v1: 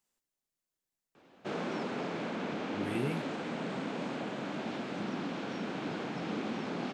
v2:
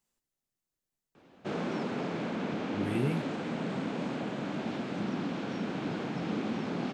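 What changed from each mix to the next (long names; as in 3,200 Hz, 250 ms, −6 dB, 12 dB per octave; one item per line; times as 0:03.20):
master: add low-shelf EQ 220 Hz +8 dB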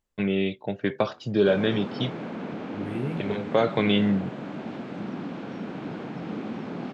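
first voice: unmuted
master: add high-shelf EQ 3,800 Hz −10 dB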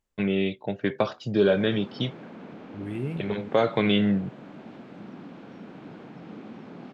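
background −8.5 dB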